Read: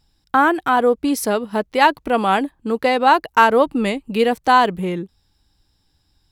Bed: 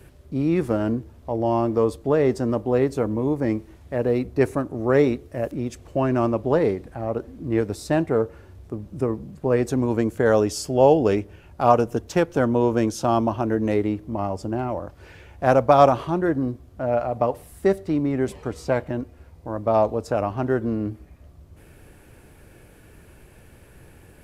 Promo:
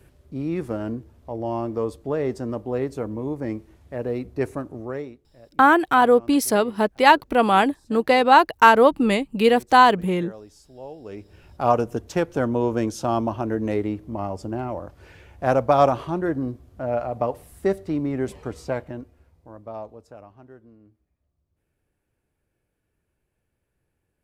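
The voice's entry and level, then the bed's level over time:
5.25 s, 0.0 dB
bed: 0:04.76 −5.5 dB
0:05.22 −23.5 dB
0:10.98 −23.5 dB
0:11.40 −2.5 dB
0:18.54 −2.5 dB
0:20.78 −27.5 dB

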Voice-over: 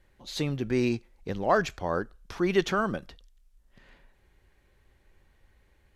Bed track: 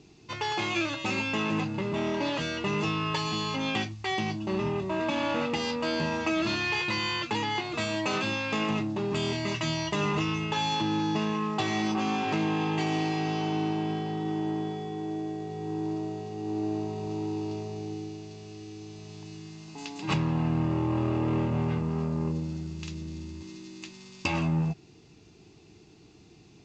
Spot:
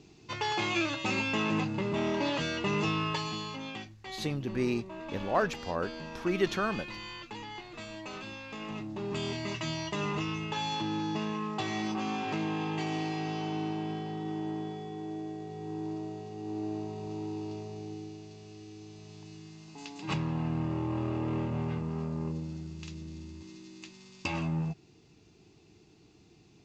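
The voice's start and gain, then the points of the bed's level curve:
3.85 s, −4.0 dB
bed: 0:03.00 −1 dB
0:03.84 −13 dB
0:08.57 −13 dB
0:09.10 −5 dB

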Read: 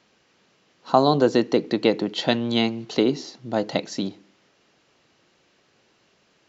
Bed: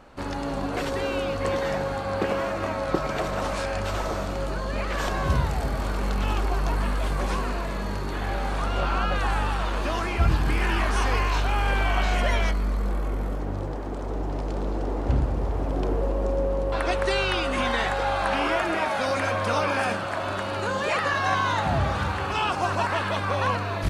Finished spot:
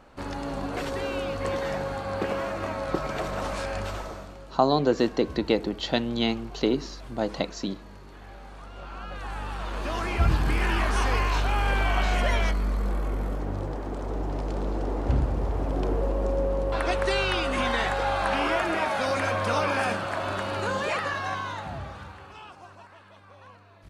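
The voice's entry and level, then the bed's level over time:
3.65 s, −4.0 dB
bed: 0:03.82 −3 dB
0:04.47 −17 dB
0:08.73 −17 dB
0:10.13 −1 dB
0:20.75 −1 dB
0:22.95 −25.5 dB

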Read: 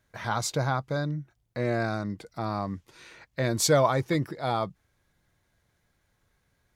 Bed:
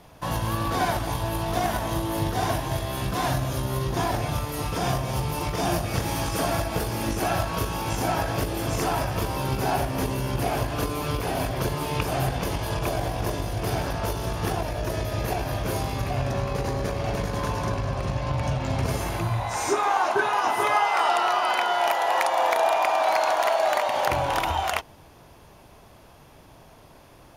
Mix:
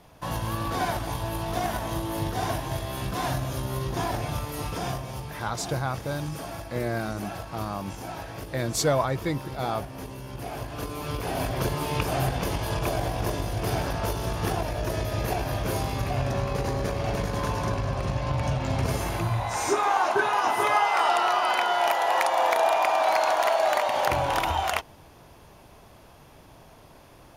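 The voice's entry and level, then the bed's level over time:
5.15 s, −2.0 dB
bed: 0:04.67 −3 dB
0:05.43 −11.5 dB
0:10.26 −11.5 dB
0:11.54 −0.5 dB

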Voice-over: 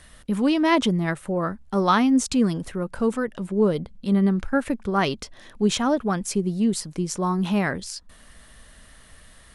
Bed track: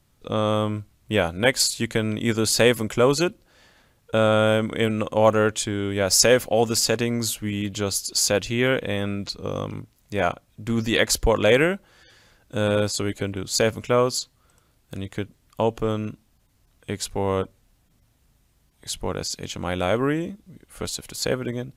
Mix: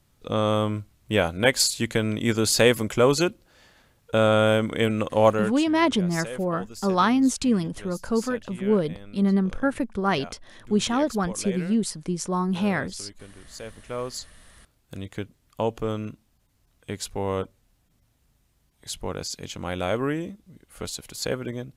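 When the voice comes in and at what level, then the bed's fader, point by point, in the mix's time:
5.10 s, −1.5 dB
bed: 0:05.27 −0.5 dB
0:05.75 −19 dB
0:13.61 −19 dB
0:14.44 −3.5 dB

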